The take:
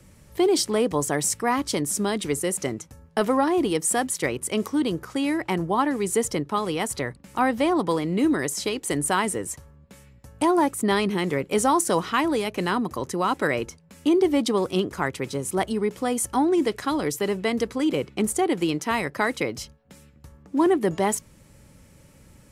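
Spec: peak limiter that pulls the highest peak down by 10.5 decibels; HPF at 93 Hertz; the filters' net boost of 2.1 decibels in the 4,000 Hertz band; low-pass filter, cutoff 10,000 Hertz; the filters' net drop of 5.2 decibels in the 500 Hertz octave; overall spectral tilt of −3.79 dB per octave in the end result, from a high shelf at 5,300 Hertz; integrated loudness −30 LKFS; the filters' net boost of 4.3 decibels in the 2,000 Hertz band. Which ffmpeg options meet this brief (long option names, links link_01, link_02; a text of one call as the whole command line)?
ffmpeg -i in.wav -af "highpass=93,lowpass=10000,equalizer=frequency=500:width_type=o:gain=-7.5,equalizer=frequency=2000:width_type=o:gain=5.5,equalizer=frequency=4000:width_type=o:gain=3,highshelf=frequency=5300:gain=-5,volume=-1.5dB,alimiter=limit=-19.5dB:level=0:latency=1" out.wav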